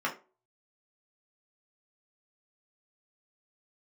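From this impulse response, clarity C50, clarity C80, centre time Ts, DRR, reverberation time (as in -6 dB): 12.5 dB, 19.0 dB, 16 ms, -3.5 dB, 0.35 s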